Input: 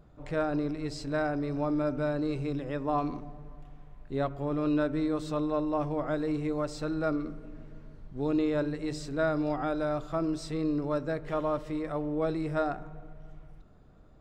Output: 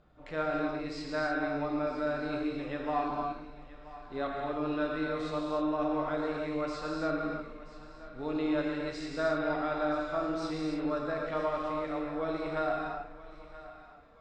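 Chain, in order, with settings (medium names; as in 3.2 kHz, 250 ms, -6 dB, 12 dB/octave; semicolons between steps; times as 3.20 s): low-pass 4.4 kHz 12 dB/octave; bass shelf 490 Hz -11.5 dB; band-stop 990 Hz, Q 23; on a send: thinning echo 978 ms, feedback 45%, high-pass 480 Hz, level -15.5 dB; on the sum: gated-style reverb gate 330 ms flat, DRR -1.5 dB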